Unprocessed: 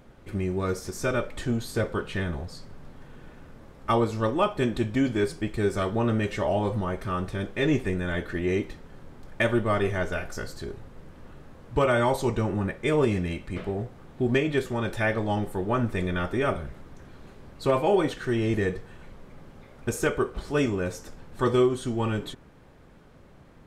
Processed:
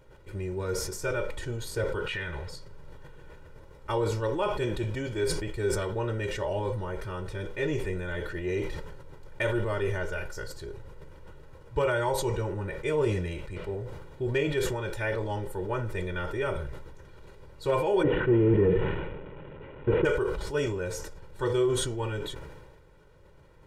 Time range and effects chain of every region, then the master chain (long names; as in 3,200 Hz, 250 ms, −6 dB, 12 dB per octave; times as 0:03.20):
0:02.06–0:02.49: parametric band 2,100 Hz +13.5 dB 1.9 octaves + downward compressor, threshold −25 dBFS
0:18.03–0:20.05: linear delta modulator 16 kbit/s, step −40 dBFS + parametric band 250 Hz +12.5 dB 2.6 octaves
whole clip: comb filter 2.1 ms, depth 75%; level that may fall only so fast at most 37 dB per second; level −7 dB